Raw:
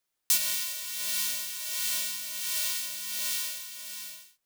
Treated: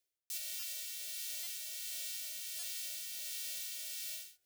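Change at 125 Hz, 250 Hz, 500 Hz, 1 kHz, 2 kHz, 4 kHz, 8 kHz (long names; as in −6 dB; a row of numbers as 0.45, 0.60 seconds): can't be measured, below −15 dB, −11.0 dB, below −20 dB, −12.0 dB, −10.5 dB, −10.5 dB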